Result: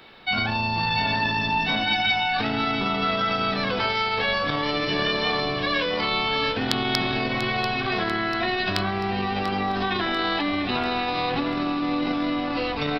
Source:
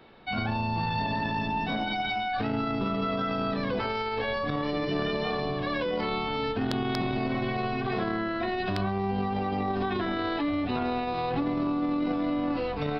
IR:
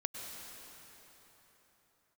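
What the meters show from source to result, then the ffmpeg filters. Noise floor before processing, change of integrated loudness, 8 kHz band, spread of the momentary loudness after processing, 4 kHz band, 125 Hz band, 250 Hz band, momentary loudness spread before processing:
-31 dBFS, +5.5 dB, n/a, 3 LU, +12.0 dB, +1.0 dB, +1.5 dB, 2 LU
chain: -af "tiltshelf=f=1.4k:g=-6.5,aecho=1:1:691|1382|2073|2764|3455|4146:0.266|0.144|0.0776|0.0419|0.0226|0.0122,volume=7dB"

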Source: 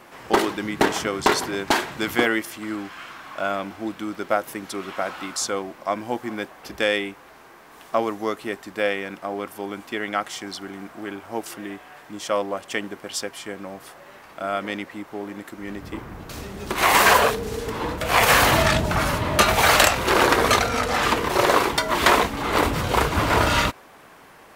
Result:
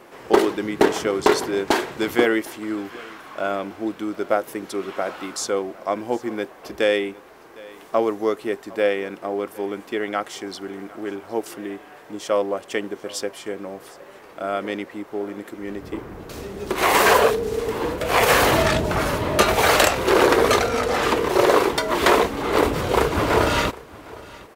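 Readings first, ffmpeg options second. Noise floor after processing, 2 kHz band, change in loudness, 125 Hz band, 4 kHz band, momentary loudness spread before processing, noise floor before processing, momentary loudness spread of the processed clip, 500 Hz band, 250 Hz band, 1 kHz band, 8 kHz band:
-45 dBFS, -1.5 dB, +0.5 dB, -1.5 dB, -2.0 dB, 18 LU, -48 dBFS, 17 LU, +4.5 dB, +2.5 dB, -0.5 dB, -2.0 dB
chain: -filter_complex "[0:a]equalizer=f=420:t=o:w=1:g=8.5,asplit=2[a][b];[b]aecho=0:1:759:0.0841[c];[a][c]amix=inputs=2:normalize=0,volume=-2dB"

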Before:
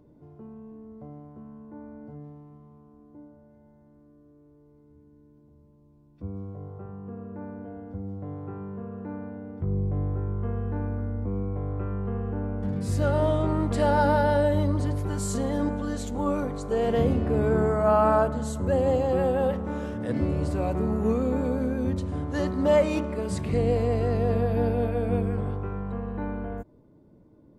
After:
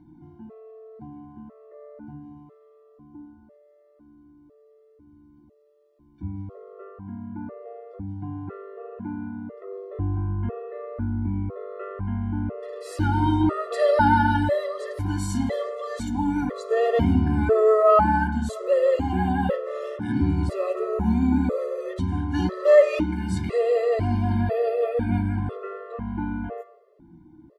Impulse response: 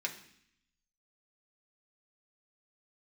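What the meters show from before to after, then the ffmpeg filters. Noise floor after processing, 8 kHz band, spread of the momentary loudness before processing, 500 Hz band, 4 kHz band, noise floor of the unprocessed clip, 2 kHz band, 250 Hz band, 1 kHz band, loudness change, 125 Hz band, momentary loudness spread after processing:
-57 dBFS, -2.5 dB, 18 LU, +3.0 dB, +2.0 dB, -57 dBFS, +5.0 dB, +2.5 dB, +4.0 dB, +2.5 dB, +0.5 dB, 20 LU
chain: -filter_complex "[0:a]asplit=2[a][b];[b]adelay=12,volume=-11.5dB[c];[a][c]amix=inputs=2:normalize=0,asplit=2[d][e];[1:a]atrim=start_sample=2205,asetrate=37485,aresample=44100,lowpass=5k[f];[e][f]afir=irnorm=-1:irlink=0,volume=-1.5dB[g];[d][g]amix=inputs=2:normalize=0,afftfilt=real='re*gt(sin(2*PI*1*pts/sr)*(1-2*mod(floor(b*sr/1024/350),2)),0)':imag='im*gt(sin(2*PI*1*pts/sr)*(1-2*mod(floor(b*sr/1024/350),2)),0)':win_size=1024:overlap=0.75,volume=1.5dB"

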